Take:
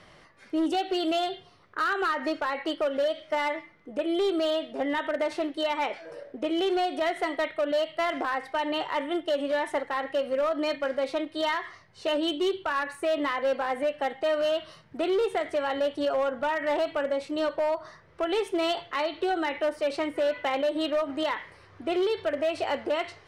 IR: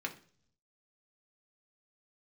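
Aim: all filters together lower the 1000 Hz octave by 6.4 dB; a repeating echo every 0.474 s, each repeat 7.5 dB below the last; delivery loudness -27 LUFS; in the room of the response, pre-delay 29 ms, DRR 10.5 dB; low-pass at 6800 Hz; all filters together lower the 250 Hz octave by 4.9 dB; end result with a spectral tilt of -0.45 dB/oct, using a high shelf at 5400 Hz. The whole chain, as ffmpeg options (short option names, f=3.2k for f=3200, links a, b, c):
-filter_complex "[0:a]lowpass=6.8k,equalizer=f=250:t=o:g=-6.5,equalizer=f=1k:t=o:g=-8,highshelf=f=5.4k:g=-8.5,aecho=1:1:474|948|1422|1896|2370:0.422|0.177|0.0744|0.0312|0.0131,asplit=2[a][b];[1:a]atrim=start_sample=2205,adelay=29[c];[b][c]afir=irnorm=-1:irlink=0,volume=-13dB[d];[a][d]amix=inputs=2:normalize=0,volume=4.5dB"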